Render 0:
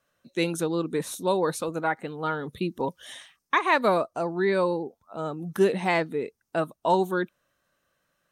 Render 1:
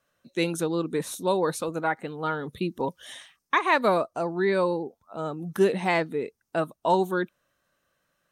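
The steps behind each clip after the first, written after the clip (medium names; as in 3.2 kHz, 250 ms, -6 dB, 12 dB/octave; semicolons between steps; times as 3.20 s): no audible change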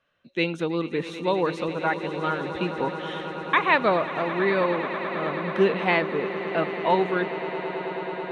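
resonant low-pass 3 kHz, resonance Q 1.8; echo with a slow build-up 108 ms, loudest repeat 8, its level -16.5 dB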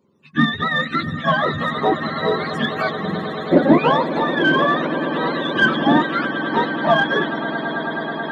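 spectrum inverted on a logarithmic axis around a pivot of 780 Hz; in parallel at -7 dB: saturation -22.5 dBFS, distortion -10 dB; on the sum: trim +6 dB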